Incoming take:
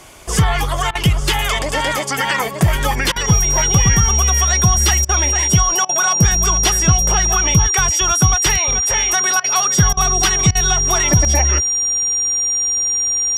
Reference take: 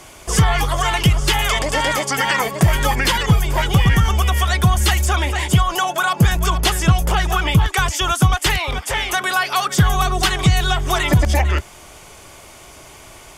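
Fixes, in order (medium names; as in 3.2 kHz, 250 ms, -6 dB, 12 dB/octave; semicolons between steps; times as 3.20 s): band-stop 5.7 kHz, Q 30; interpolate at 0.91/3.12/5.05/5.85/9.40/9.93/10.51 s, 40 ms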